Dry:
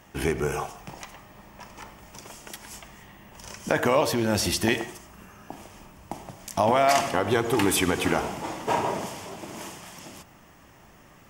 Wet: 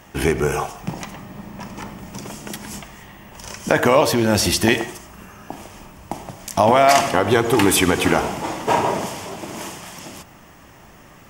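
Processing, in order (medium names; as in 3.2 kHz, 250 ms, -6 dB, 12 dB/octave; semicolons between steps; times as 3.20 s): 0.83–2.83 s: peaking EQ 190 Hz +10.5 dB 1.9 oct; trim +7 dB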